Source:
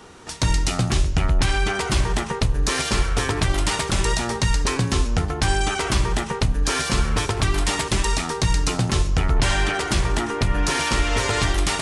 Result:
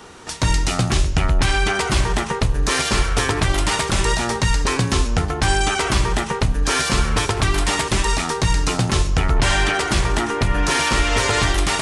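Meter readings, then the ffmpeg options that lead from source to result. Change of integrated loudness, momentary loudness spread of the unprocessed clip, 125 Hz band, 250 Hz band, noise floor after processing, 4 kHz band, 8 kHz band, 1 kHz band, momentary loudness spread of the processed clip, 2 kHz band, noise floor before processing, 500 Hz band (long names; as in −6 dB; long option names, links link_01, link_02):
+2.5 dB, 2 LU, +1.5 dB, +2.0 dB, −27 dBFS, +3.0 dB, +2.5 dB, +4.0 dB, 3 LU, +4.0 dB, −30 dBFS, +3.0 dB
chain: -filter_complex "[0:a]lowshelf=frequency=450:gain=-3,acrossover=split=2300[link_01][link_02];[link_02]alimiter=limit=-18dB:level=0:latency=1[link_03];[link_01][link_03]amix=inputs=2:normalize=0,volume=4.5dB"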